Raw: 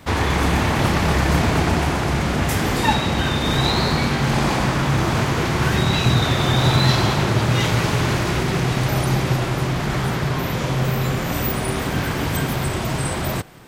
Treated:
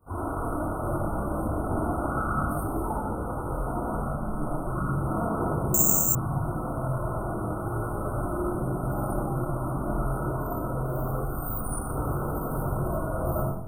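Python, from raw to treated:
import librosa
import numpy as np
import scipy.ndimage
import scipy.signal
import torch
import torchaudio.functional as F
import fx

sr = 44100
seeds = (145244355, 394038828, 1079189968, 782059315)

y = fx.peak_eq(x, sr, hz=500.0, db=-8.0, octaves=2.0, at=(11.15, 11.88))
y = fx.rider(y, sr, range_db=4, speed_s=0.5)
y = fx.chorus_voices(y, sr, voices=4, hz=0.7, base_ms=21, depth_ms=2.2, mix_pct=70)
y = fx.spec_paint(y, sr, seeds[0], shape='noise', start_s=2.05, length_s=0.42, low_hz=1100.0, high_hz=5500.0, level_db=-17.0)
y = fx.ring_mod(y, sr, carrier_hz=78.0, at=(4.08, 4.65), fade=0.02)
y = fx.brickwall_bandstop(y, sr, low_hz=1500.0, high_hz=8400.0)
y = y + 10.0 ** (-11.5 / 20.0) * np.pad(y, (int(122 * sr / 1000.0), 0))[:len(y)]
y = fx.rev_freeverb(y, sr, rt60_s=0.51, hf_ratio=0.35, predelay_ms=25, drr_db=-4.5)
y = fx.resample_bad(y, sr, factor=6, down='filtered', up='zero_stuff', at=(5.74, 6.15))
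y = y * librosa.db_to_amplitude(-12.0)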